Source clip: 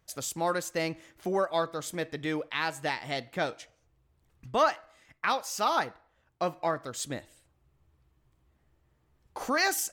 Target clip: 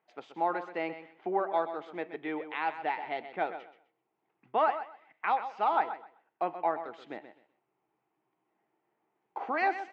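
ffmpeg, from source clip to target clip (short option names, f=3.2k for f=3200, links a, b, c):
-filter_complex "[0:a]highpass=f=250:w=0.5412,highpass=f=250:w=1.3066,equalizer=f=260:t=q:w=4:g=-8,equalizer=f=550:t=q:w=4:g=-8,equalizer=f=800:t=q:w=4:g=6,equalizer=f=1.2k:t=q:w=4:g=-5,equalizer=f=1.7k:t=q:w=4:g=-6,lowpass=f=2.4k:w=0.5412,lowpass=f=2.4k:w=1.3066,asplit=2[a][b];[b]aecho=0:1:128|256|384:0.282|0.0592|0.0124[c];[a][c]amix=inputs=2:normalize=0"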